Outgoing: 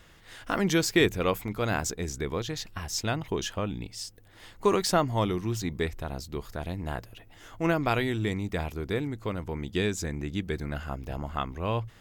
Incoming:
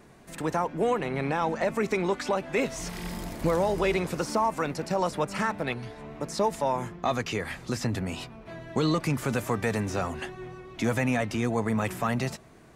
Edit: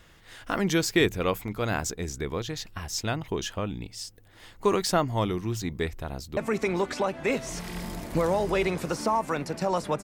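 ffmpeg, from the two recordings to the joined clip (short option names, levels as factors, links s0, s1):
-filter_complex "[0:a]apad=whole_dur=10.03,atrim=end=10.03,atrim=end=6.372[s0];[1:a]atrim=start=1.658:end=5.32[s1];[s0][s1]acrossfade=d=0.004:c1=hsin:c2=hsin,asplit=2[s2][s3];[s3]afade=t=in:st=6.06:d=0.01,afade=t=out:st=6.37:d=0.01,aecho=0:1:560|1120|1680|2240|2800|3360|3920|4480|5040|5600:0.266073|0.186251|0.130376|0.0912629|0.063884|0.0447188|0.0313032|0.0219122|0.0153386|0.010737[s4];[s2][s4]amix=inputs=2:normalize=0"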